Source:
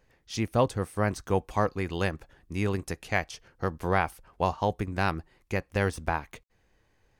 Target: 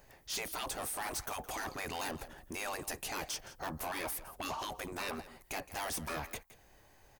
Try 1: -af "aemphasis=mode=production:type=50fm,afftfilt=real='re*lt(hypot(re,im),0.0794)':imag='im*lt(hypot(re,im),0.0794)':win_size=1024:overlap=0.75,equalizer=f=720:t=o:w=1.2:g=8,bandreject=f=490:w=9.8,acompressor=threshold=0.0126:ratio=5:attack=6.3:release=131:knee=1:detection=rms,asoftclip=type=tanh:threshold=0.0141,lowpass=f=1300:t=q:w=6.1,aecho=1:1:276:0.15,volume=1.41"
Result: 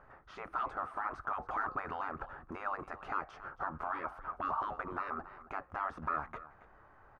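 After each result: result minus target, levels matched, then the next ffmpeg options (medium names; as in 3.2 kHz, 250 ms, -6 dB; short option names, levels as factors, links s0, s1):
echo 109 ms late; compression: peak gain reduction +12 dB; 1 kHz band +5.0 dB
-af "aemphasis=mode=production:type=50fm,afftfilt=real='re*lt(hypot(re,im),0.0794)':imag='im*lt(hypot(re,im),0.0794)':win_size=1024:overlap=0.75,equalizer=f=720:t=o:w=1.2:g=8,bandreject=f=490:w=9.8,acompressor=threshold=0.0126:ratio=5:attack=6.3:release=131:knee=1:detection=rms,asoftclip=type=tanh:threshold=0.0141,lowpass=f=1300:t=q:w=6.1,aecho=1:1:167:0.15,volume=1.41"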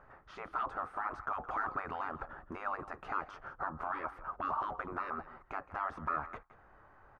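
compression: peak gain reduction +12 dB; 1 kHz band +5.0 dB
-af "aemphasis=mode=production:type=50fm,afftfilt=real='re*lt(hypot(re,im),0.0794)':imag='im*lt(hypot(re,im),0.0794)':win_size=1024:overlap=0.75,equalizer=f=720:t=o:w=1.2:g=8,bandreject=f=490:w=9.8,asoftclip=type=tanh:threshold=0.0141,lowpass=f=1300:t=q:w=6.1,aecho=1:1:167:0.15,volume=1.41"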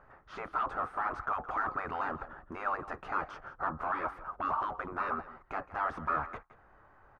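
1 kHz band +5.0 dB
-af "aemphasis=mode=production:type=50fm,afftfilt=real='re*lt(hypot(re,im),0.0794)':imag='im*lt(hypot(re,im),0.0794)':win_size=1024:overlap=0.75,equalizer=f=720:t=o:w=1.2:g=8,bandreject=f=490:w=9.8,asoftclip=type=tanh:threshold=0.0141,aecho=1:1:167:0.15,volume=1.41"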